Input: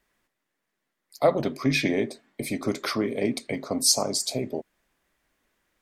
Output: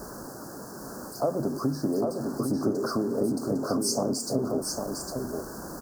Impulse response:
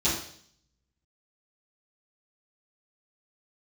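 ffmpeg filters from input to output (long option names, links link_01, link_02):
-filter_complex "[0:a]aeval=exprs='val(0)+0.5*0.0299*sgn(val(0))':channel_layout=same,highpass=frequency=150:poles=1,tiltshelf=frequency=690:gain=6.5,acompressor=threshold=-24dB:ratio=5,asuperstop=centerf=2700:order=12:qfactor=0.88,asplit=2[link_01][link_02];[link_02]aecho=0:1:805:0.596[link_03];[link_01][link_03]amix=inputs=2:normalize=0"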